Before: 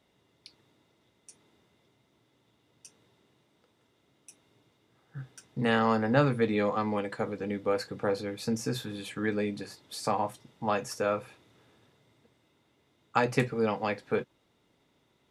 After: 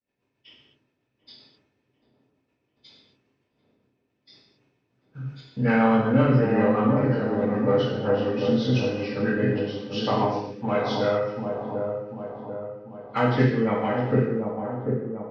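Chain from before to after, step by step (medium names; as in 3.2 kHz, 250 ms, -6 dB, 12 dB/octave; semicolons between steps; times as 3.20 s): knee-point frequency compression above 1.3 kHz 1.5:1; in parallel at -5 dB: saturation -23.5 dBFS, distortion -12 dB; on the sum: rotary cabinet horn 7.5 Hz; expander -57 dBFS; on a send: feedback echo behind a low-pass 742 ms, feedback 52%, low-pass 840 Hz, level -4 dB; on the sum: gated-style reverb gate 280 ms falling, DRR -4 dB; trim -1 dB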